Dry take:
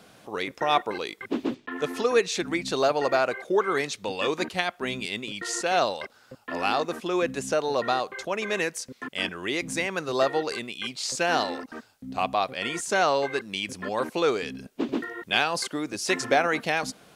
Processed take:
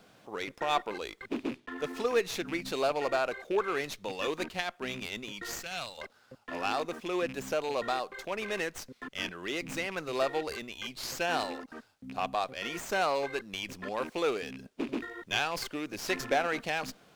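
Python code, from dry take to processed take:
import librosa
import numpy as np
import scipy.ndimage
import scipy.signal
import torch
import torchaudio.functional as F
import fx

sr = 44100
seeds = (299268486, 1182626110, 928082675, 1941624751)

y = fx.rattle_buzz(x, sr, strikes_db=-37.0, level_db=-27.0)
y = fx.peak_eq(y, sr, hz=510.0, db=-14.0, octaves=2.8, at=(5.54, 5.98))
y = fx.running_max(y, sr, window=3)
y = y * librosa.db_to_amplitude(-6.0)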